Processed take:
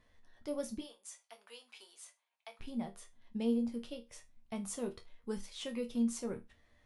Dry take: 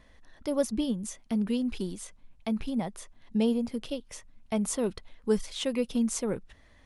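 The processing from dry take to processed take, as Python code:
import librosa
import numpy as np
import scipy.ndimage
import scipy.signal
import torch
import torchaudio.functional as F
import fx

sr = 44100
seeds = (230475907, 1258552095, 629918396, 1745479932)

y = fx.highpass(x, sr, hz=670.0, slope=24, at=(0.79, 2.59), fade=0.02)
y = fx.resonator_bank(y, sr, root=39, chord='major', decay_s=0.22)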